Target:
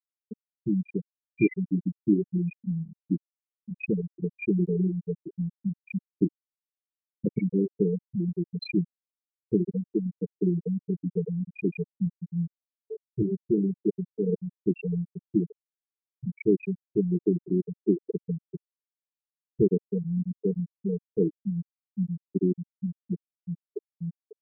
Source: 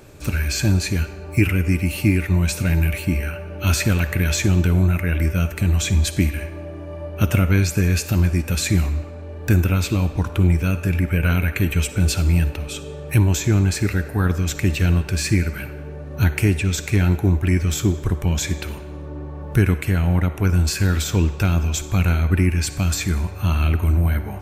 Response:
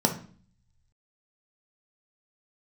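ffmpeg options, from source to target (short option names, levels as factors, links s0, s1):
-filter_complex "[0:a]highpass=f=170:w=0.5412,highpass=f=170:w=1.3066,equalizer=f=260:t=q:w=4:g=-6,equalizer=f=440:t=q:w=4:g=7,equalizer=f=670:t=q:w=4:g=-5,equalizer=f=1400:t=q:w=4:g=-9,lowpass=f=6900:w=0.5412,lowpass=f=6900:w=1.3066,afftfilt=real='re*gte(hypot(re,im),0.398)':imag='im*gte(hypot(re,im),0.398)':win_size=1024:overlap=0.75,acrossover=split=3600[s0][s1];[s0]adelay=30[s2];[s2][s1]amix=inputs=2:normalize=0"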